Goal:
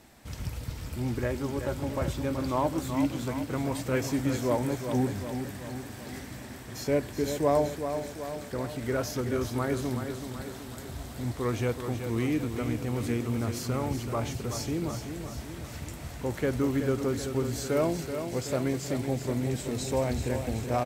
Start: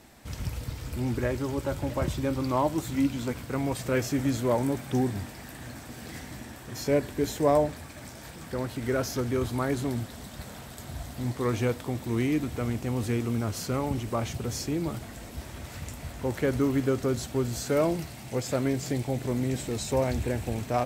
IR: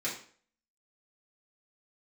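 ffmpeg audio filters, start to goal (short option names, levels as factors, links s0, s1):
-af "aecho=1:1:378|756|1134|1512|1890|2268|2646:0.398|0.227|0.129|0.0737|0.042|0.024|0.0137,volume=0.794"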